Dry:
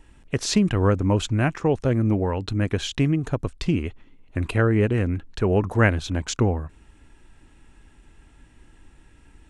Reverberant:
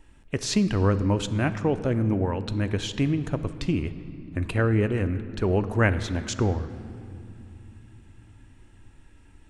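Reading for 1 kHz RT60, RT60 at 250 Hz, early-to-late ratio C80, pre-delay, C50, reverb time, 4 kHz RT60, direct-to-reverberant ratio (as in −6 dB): 2.6 s, 5.1 s, 14.0 dB, 3 ms, 12.5 dB, 2.8 s, 1.7 s, 11.0 dB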